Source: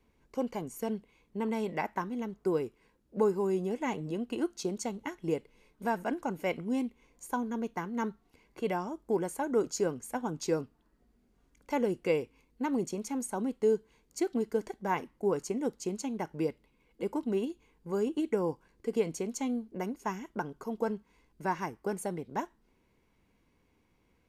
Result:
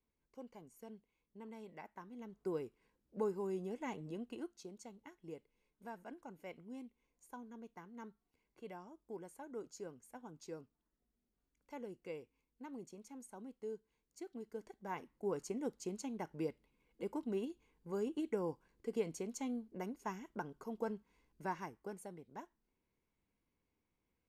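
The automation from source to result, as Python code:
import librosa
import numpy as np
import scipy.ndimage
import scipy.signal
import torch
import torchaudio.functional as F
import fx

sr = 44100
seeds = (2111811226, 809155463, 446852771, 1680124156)

y = fx.gain(x, sr, db=fx.line((1.96, -19.0), (2.45, -10.0), (4.21, -10.0), (4.68, -18.0), (14.29, -18.0), (15.43, -8.0), (21.43, -8.0), (22.14, -15.5)))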